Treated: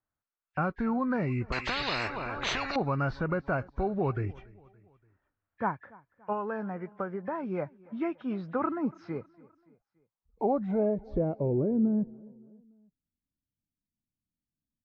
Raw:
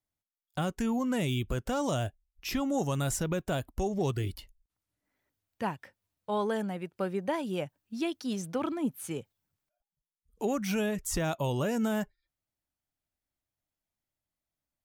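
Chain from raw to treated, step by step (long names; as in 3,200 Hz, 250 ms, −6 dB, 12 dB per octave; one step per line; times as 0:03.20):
hearing-aid frequency compression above 1,600 Hz 1.5 to 1
0:06.32–0:07.43: downward compressor, threshold −32 dBFS, peak gain reduction 7 dB
low-pass filter sweep 1,400 Hz → 230 Hz, 0:09.65–0:12.34
on a send: repeating echo 286 ms, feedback 51%, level −23.5 dB
0:01.52–0:02.76: on the sum: every bin compressed towards the loudest bin 10 to 1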